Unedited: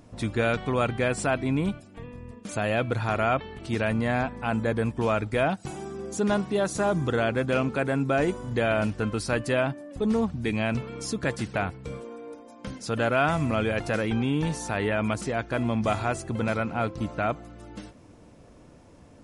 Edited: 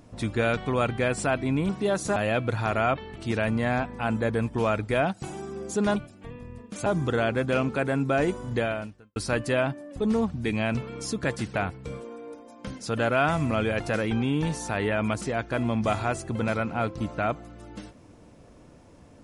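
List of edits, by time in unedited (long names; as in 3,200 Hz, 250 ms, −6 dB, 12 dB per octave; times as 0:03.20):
0:01.69–0:02.59: swap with 0:06.39–0:06.86
0:08.57–0:09.16: fade out quadratic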